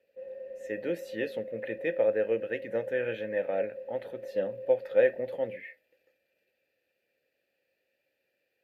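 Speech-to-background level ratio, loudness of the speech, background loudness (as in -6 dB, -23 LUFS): 11.0 dB, -31.5 LUFS, -42.5 LUFS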